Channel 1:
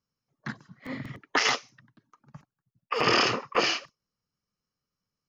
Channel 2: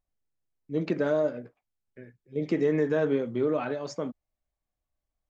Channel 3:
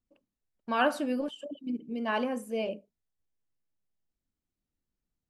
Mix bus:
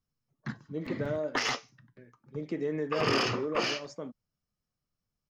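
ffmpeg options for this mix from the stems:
ffmpeg -i stem1.wav -i stem2.wav -filter_complex "[0:a]lowshelf=frequency=220:gain=9,flanger=delay=7.8:depth=1.3:regen=-77:speed=0.64:shape=triangular,aeval=exprs='0.224*(cos(1*acos(clip(val(0)/0.224,-1,1)))-cos(1*PI/2))+0.0112*(cos(5*acos(clip(val(0)/0.224,-1,1)))-cos(5*PI/2))':channel_layout=same,volume=-3dB[link_01];[1:a]volume=-7.5dB[link_02];[link_01][link_02]amix=inputs=2:normalize=0" out.wav

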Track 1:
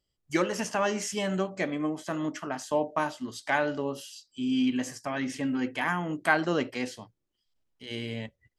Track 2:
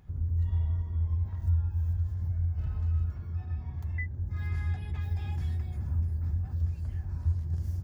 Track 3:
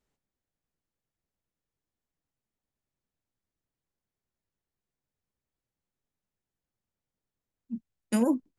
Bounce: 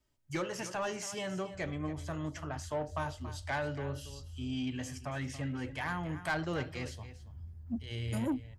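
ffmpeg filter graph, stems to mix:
ffmpeg -i stem1.wav -i stem2.wav -i stem3.wav -filter_complex "[0:a]lowshelf=frequency=170:width_type=q:width=3:gain=6.5,volume=-6dB,asplit=3[link_01][link_02][link_03];[link_02]volume=-15dB[link_04];[1:a]adelay=1450,volume=-18dB,asplit=2[link_05][link_06];[link_06]volume=-12dB[link_07];[2:a]aecho=1:1:3.2:0.92,volume=-1dB[link_08];[link_03]apad=whole_len=379020[link_09];[link_08][link_09]sidechaincompress=threshold=-43dB:ratio=8:attack=16:release=424[link_10];[link_04][link_07]amix=inputs=2:normalize=0,aecho=0:1:280:1[link_11];[link_01][link_05][link_10][link_11]amix=inputs=4:normalize=0,asoftclip=type=tanh:threshold=-26.5dB" out.wav

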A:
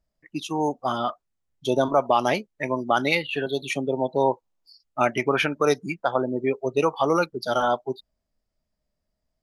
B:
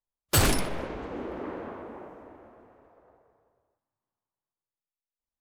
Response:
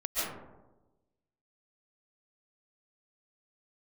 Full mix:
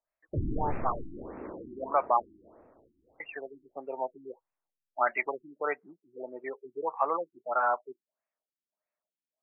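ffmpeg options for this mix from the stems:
-filter_complex "[0:a]highpass=910,volume=0dB,asplit=3[link_01][link_02][link_03];[link_01]atrim=end=2.22,asetpts=PTS-STARTPTS,afade=type=out:start_time=2.216:duration=0.004:curve=hsin[link_04];[link_02]atrim=start=2.22:end=3.2,asetpts=PTS-STARTPTS,volume=0[link_05];[link_03]atrim=start=3.2,asetpts=PTS-STARTPTS,afade=type=in:duration=0.004:curve=hsin[link_06];[link_04][link_05][link_06]concat=n=3:v=0:a=1[link_07];[1:a]volume=-9dB,asplit=2[link_08][link_09];[link_09]volume=-9.5dB[link_10];[2:a]atrim=start_sample=2205[link_11];[link_10][link_11]afir=irnorm=-1:irlink=0[link_12];[link_07][link_08][link_12]amix=inputs=3:normalize=0,afftfilt=real='re*lt(b*sr/1024,350*pow(2800/350,0.5+0.5*sin(2*PI*1.6*pts/sr)))':imag='im*lt(b*sr/1024,350*pow(2800/350,0.5+0.5*sin(2*PI*1.6*pts/sr)))':win_size=1024:overlap=0.75"

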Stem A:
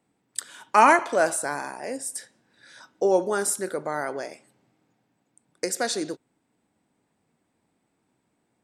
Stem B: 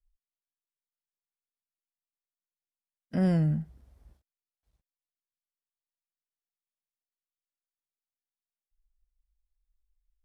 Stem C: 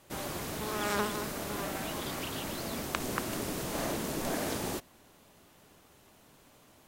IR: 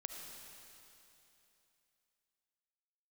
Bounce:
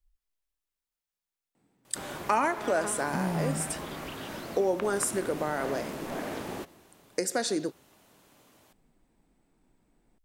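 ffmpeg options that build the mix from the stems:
-filter_complex "[0:a]lowshelf=frequency=330:gain=8.5,adelay=1550,volume=-1.5dB[link_01];[1:a]acompressor=threshold=-39dB:ratio=2.5,volume=2dB,asplit=2[link_02][link_03];[link_03]volume=-6.5dB[link_04];[2:a]acrossover=split=3200[link_05][link_06];[link_06]acompressor=threshold=-49dB:ratio=4:attack=1:release=60[link_07];[link_05][link_07]amix=inputs=2:normalize=0,adelay=1850,volume=-1.5dB,asplit=2[link_08][link_09];[link_09]volume=-15dB[link_10];[link_01][link_08]amix=inputs=2:normalize=0,lowshelf=frequency=91:gain=-9.5,acompressor=threshold=-25dB:ratio=3,volume=0dB[link_11];[3:a]atrim=start_sample=2205[link_12];[link_04][link_10]amix=inputs=2:normalize=0[link_13];[link_13][link_12]afir=irnorm=-1:irlink=0[link_14];[link_02][link_11][link_14]amix=inputs=3:normalize=0"

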